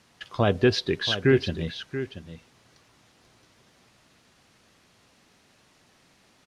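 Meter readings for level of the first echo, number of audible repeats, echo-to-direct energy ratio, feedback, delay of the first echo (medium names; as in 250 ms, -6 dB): -11.5 dB, 1, -11.5 dB, no regular repeats, 682 ms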